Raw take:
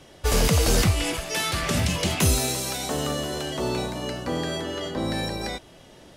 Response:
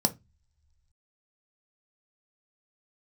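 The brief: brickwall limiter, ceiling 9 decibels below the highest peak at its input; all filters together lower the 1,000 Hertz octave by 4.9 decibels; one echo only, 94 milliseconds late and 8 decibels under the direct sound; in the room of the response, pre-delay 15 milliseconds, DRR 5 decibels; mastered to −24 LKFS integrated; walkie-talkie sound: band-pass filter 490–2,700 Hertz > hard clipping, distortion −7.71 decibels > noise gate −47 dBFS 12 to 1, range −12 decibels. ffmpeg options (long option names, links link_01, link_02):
-filter_complex "[0:a]equalizer=frequency=1000:width_type=o:gain=-6,alimiter=limit=-20.5dB:level=0:latency=1,aecho=1:1:94:0.398,asplit=2[link_01][link_02];[1:a]atrim=start_sample=2205,adelay=15[link_03];[link_02][link_03]afir=irnorm=-1:irlink=0,volume=-13.5dB[link_04];[link_01][link_04]amix=inputs=2:normalize=0,highpass=490,lowpass=2700,asoftclip=type=hard:threshold=-36dB,agate=range=-12dB:threshold=-47dB:ratio=12,volume=14dB"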